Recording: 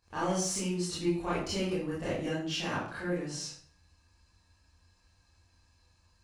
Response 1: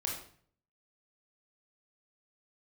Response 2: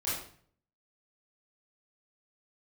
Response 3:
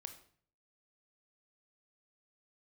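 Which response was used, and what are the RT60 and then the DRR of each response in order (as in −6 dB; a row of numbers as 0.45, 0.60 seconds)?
2; 0.55, 0.55, 0.55 seconds; −2.0, −10.5, 6.5 decibels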